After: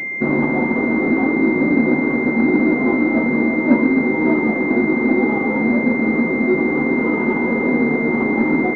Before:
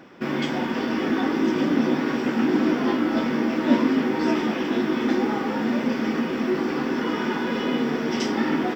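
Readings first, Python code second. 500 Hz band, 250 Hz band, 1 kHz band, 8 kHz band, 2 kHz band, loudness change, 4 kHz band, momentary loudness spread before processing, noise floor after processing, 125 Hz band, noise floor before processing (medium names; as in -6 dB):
+6.0 dB, +6.0 dB, +3.0 dB, no reading, +11.0 dB, +6.5 dB, under -15 dB, 4 LU, -21 dBFS, +6.5 dB, -28 dBFS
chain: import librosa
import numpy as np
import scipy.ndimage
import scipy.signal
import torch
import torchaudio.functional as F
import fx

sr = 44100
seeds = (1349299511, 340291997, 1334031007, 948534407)

p1 = fx.rider(x, sr, range_db=10, speed_s=0.5)
p2 = x + (p1 * 10.0 ** (2.5 / 20.0))
p3 = fx.pwm(p2, sr, carrier_hz=2100.0)
y = p3 * 10.0 ** (-1.0 / 20.0)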